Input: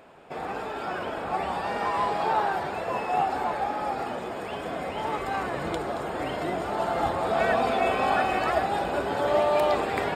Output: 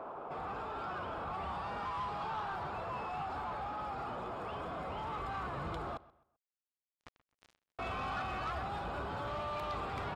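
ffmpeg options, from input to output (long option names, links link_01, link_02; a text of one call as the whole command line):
ffmpeg -i in.wav -filter_complex "[0:a]firequalizer=gain_entry='entry(180,0);entry(320,5);entry(1200,13);entry(1800,-7);entry(8400,-19)':delay=0.05:min_phase=1,acrossover=split=150|2200[link_01][link_02][link_03];[link_02]alimiter=level_in=12.5dB:limit=-24dB:level=0:latency=1,volume=-12.5dB[link_04];[link_01][link_04][link_03]amix=inputs=3:normalize=0,asettb=1/sr,asplit=3[link_05][link_06][link_07];[link_05]atrim=end=5.974[link_08];[link_06]atrim=start=5.97:end=7.79,asetpts=PTS-STARTPTS,afade=type=in:duration=0.004:curve=qsin,afade=type=out:start_time=1.816:duration=0.004:curve=qsin,acrusher=bits=3:mix=0:aa=0.5[link_09];[link_07]atrim=start=7.786[link_10];[link_08][link_09]acrossfade=duration=0.004:curve1=hsin:curve2=qsin[link_11];[link_11][link_10]acrossfade=duration=0.004:curve1=qsin:curve2=hsin,asoftclip=type=tanh:threshold=-33dB,asplit=2[link_12][link_13];[link_13]adelay=130,lowpass=frequency=3800:poles=1,volume=-20dB,asplit=2[link_14][link_15];[link_15]adelay=130,lowpass=frequency=3800:poles=1,volume=0.33,asplit=2[link_16][link_17];[link_17]adelay=130,lowpass=frequency=3800:poles=1,volume=0.33[link_18];[link_12][link_14][link_16][link_18]amix=inputs=4:normalize=0,volume=1dB" out.wav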